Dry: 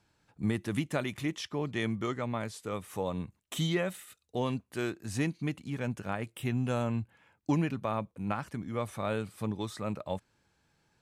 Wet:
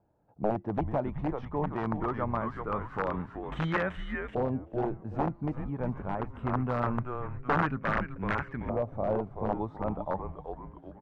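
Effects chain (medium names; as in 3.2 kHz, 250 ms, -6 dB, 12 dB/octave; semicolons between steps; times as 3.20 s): frequency-shifting echo 381 ms, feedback 49%, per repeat -130 Hz, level -6.5 dB; integer overflow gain 22 dB; LFO low-pass saw up 0.23 Hz 650–1800 Hz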